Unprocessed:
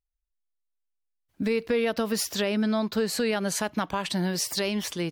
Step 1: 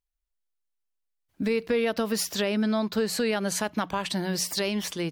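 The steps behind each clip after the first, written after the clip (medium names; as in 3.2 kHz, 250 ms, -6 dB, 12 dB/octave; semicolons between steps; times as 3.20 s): hum notches 60/120/180 Hz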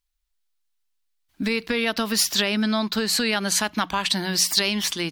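graphic EQ 125/500/4000 Hz -11/-10/+4 dB; trim +7 dB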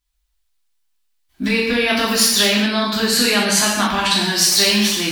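gated-style reverb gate 300 ms falling, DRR -6.5 dB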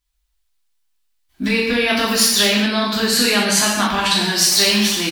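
delay 937 ms -20.5 dB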